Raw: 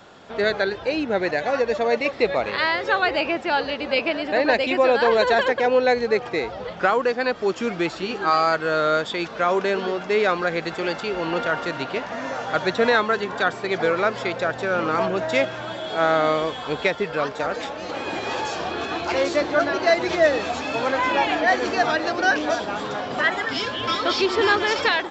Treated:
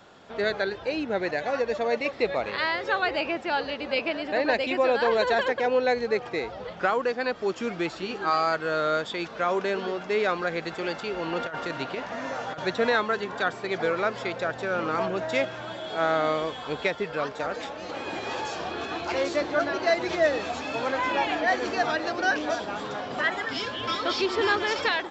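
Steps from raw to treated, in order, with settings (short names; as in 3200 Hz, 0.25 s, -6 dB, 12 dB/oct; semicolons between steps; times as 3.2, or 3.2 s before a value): 11.4–12.65 negative-ratio compressor -25 dBFS, ratio -0.5; gain -5 dB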